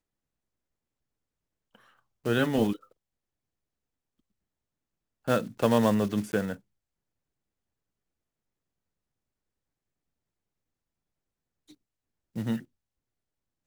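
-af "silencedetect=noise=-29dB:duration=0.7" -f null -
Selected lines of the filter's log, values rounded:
silence_start: 0.00
silence_end: 2.26 | silence_duration: 2.26
silence_start: 2.73
silence_end: 5.28 | silence_duration: 2.55
silence_start: 6.53
silence_end: 12.37 | silence_duration: 5.85
silence_start: 12.57
silence_end: 13.66 | silence_duration: 1.09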